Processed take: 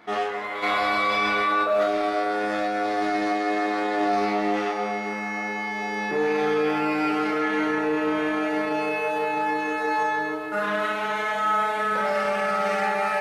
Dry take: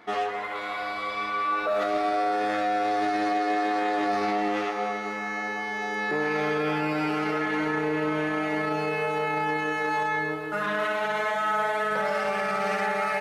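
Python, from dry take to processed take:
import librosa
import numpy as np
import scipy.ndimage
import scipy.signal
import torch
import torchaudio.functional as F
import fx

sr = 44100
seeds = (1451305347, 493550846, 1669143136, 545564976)

y = fx.doubler(x, sr, ms=24.0, db=-10.5)
y = fx.room_early_taps(y, sr, ms=(29, 42), db=(-6.5, -8.0))
y = fx.env_flatten(y, sr, amount_pct=70, at=(0.62, 1.63), fade=0.02)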